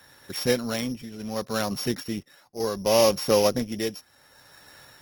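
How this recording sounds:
a buzz of ramps at a fixed pitch in blocks of 8 samples
tremolo triangle 0.68 Hz, depth 75%
Opus

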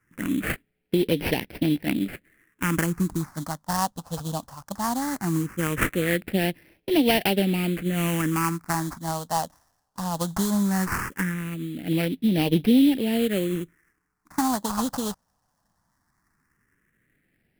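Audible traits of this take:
aliases and images of a low sample rate 3,700 Hz, jitter 20%
phaser sweep stages 4, 0.18 Hz, lowest notch 360–1,200 Hz

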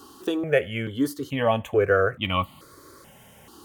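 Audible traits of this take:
notches that jump at a steady rate 2.3 Hz 580–1,600 Hz

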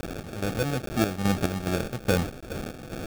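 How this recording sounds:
a quantiser's noise floor 6 bits, dither triangular
chopped level 2.4 Hz, depth 60%, duty 50%
aliases and images of a low sample rate 1,000 Hz, jitter 0%

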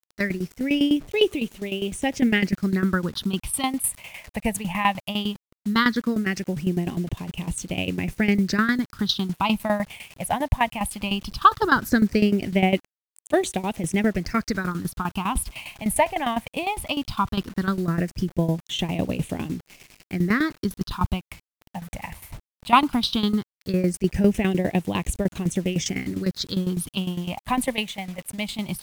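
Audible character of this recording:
phaser sweep stages 6, 0.17 Hz, lowest notch 360–1,400 Hz
a quantiser's noise floor 8 bits, dither none
tremolo saw down 9.9 Hz, depth 80%
MP3

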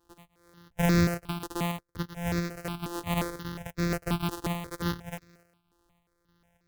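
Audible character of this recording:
a buzz of ramps at a fixed pitch in blocks of 256 samples
sample-and-hold tremolo
notches that jump at a steady rate 5.6 Hz 600–3,000 Hz

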